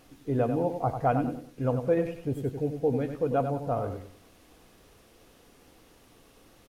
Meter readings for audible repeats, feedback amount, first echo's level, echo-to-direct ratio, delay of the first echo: 3, 31%, −8.0 dB, −7.5 dB, 96 ms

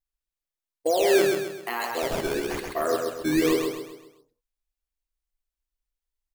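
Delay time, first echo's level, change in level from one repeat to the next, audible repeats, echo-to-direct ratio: 131 ms, −4.0 dB, −7.5 dB, 5, −3.0 dB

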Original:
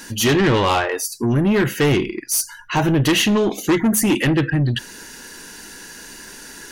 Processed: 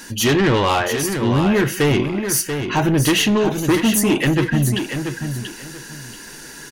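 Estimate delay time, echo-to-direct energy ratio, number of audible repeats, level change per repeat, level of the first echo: 686 ms, −7.0 dB, 3, −12.5 dB, −7.5 dB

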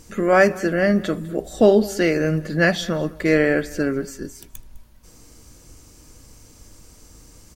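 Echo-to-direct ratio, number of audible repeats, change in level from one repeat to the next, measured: −21.0 dB, 2, −13.5 dB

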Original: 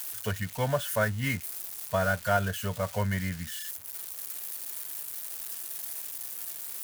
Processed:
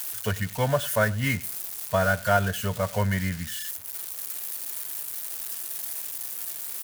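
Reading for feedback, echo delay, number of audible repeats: 28%, 98 ms, 2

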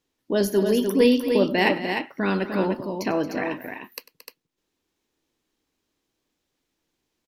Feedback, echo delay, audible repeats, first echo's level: repeats not evenly spaced, 97 ms, 3, −18.0 dB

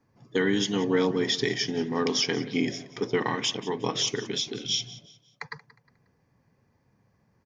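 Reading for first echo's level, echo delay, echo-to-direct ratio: −18.0 dB, 180 ms, −17.5 dB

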